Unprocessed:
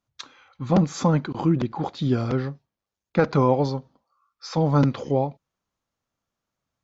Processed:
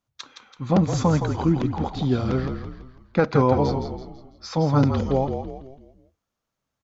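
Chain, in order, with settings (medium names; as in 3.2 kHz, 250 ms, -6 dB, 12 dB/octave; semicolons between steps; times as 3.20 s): frequency-shifting echo 166 ms, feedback 44%, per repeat -45 Hz, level -7 dB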